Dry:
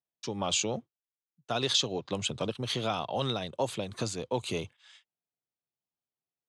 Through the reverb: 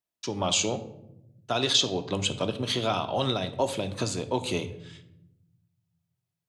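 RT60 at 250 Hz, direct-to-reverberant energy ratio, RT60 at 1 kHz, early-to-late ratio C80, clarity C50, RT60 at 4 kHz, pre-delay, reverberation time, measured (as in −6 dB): 1.5 s, 8.0 dB, 0.70 s, 16.0 dB, 13.5 dB, 0.50 s, 3 ms, 0.85 s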